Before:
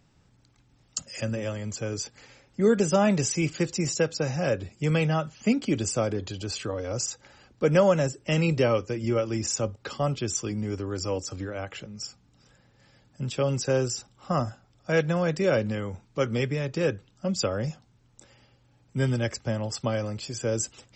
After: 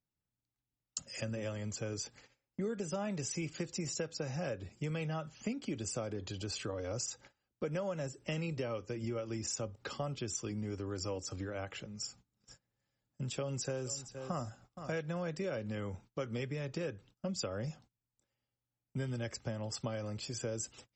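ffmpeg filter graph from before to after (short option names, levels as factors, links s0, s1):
-filter_complex "[0:a]asettb=1/sr,asplit=3[s0][s1][s2];[s0]atrim=end=11.864[s3];[s1]atrim=start=11.86:end=14.98,asetpts=PTS-STARTPTS,afade=t=in:d=0.004:c=qsin,afade=t=out:st=3.116:d=0.004:c=qsin,equalizer=f=7100:w=4.7:g=5.5,acompressor=mode=upward:threshold=0.00447:ratio=2.5:attack=3.2:release=140:knee=2.83:detection=peak,aecho=1:1:468:0.158,atrim=end_sample=137592[s4];[s2]atrim=start=14.976[s5];[s3][s4]acrossfade=d=0.004:c1=hsin:c2=qsin[s6];[s6][s5]acrossfade=d=0.004:c1=qsin:c2=hsin,agate=range=0.0562:threshold=0.00355:ratio=16:detection=peak,acompressor=threshold=0.0355:ratio=6,volume=0.531"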